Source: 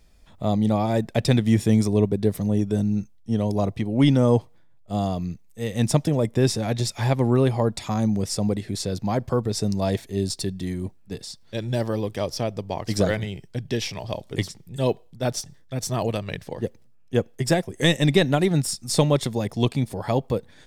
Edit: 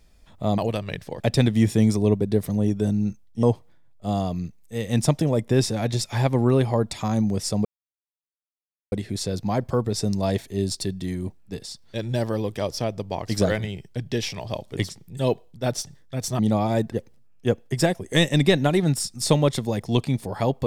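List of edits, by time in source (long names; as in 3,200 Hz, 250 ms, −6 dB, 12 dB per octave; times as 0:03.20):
0:00.58–0:01.11: swap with 0:15.98–0:16.60
0:03.34–0:04.29: remove
0:08.51: splice in silence 1.27 s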